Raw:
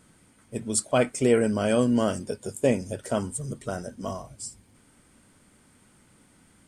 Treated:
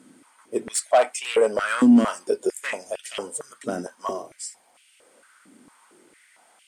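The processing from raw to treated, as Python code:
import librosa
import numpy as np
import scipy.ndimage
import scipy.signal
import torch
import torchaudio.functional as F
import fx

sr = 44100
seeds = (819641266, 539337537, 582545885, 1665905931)

y = fx.cheby_harmonics(x, sr, harmonics=(2, 5), levels_db=(-16, -13), full_scale_db=-9.0)
y = fx.filter_held_highpass(y, sr, hz=4.4, low_hz=260.0, high_hz=2700.0)
y = y * librosa.db_to_amplitude(-4.5)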